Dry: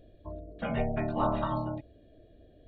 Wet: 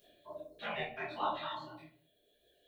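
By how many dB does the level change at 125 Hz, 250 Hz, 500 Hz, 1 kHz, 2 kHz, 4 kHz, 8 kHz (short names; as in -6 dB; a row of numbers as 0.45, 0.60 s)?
-20.5 dB, -17.0 dB, -9.5 dB, -5.0 dB, +0.5 dB, +6.0 dB, n/a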